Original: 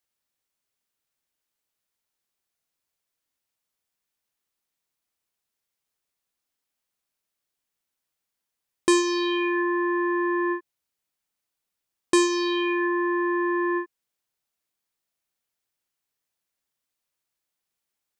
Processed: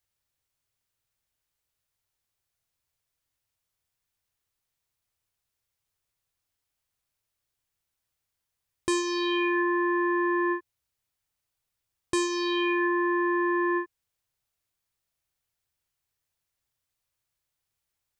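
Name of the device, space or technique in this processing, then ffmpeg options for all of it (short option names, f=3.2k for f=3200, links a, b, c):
car stereo with a boomy subwoofer: -af "lowshelf=f=150:t=q:w=1.5:g=9.5,alimiter=limit=-18dB:level=0:latency=1:release=500"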